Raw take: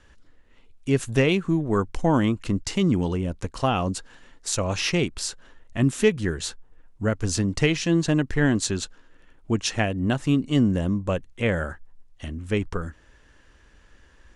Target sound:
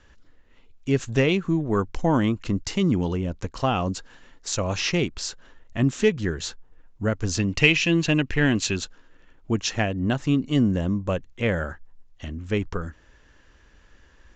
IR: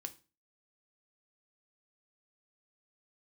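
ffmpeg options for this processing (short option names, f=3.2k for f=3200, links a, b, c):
-filter_complex "[0:a]asettb=1/sr,asplit=3[a][b][c];[a]atrim=end=7.394[d];[b]atrim=start=7.39:end=8.76,asetpts=PTS-STARTPTS,afade=t=in:d=0.004:c=qsin,afade=t=out:st=1.366:d=0.004:c=qsin,equalizer=f=2.6k:w=2.5:g=13[e];[c]atrim=start=8.756[f];[d][e]acrossfade=d=0.004:c1=hsin:c2=qsin[g];[g][f]acrossfade=d=0.004:c1=qsin:c2=hsin,asplit=2[h][i];[i]asoftclip=type=tanh:threshold=-10dB,volume=-6.5dB[j];[h][j]amix=inputs=2:normalize=0,aresample=16000,aresample=44100,volume=-3.5dB"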